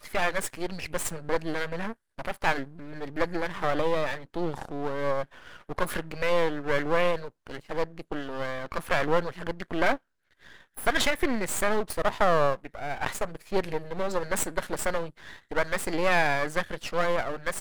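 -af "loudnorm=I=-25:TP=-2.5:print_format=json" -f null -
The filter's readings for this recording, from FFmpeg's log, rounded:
"input_i" : "-29.0",
"input_tp" : "-7.4",
"input_lra" : "2.9",
"input_thresh" : "-39.4",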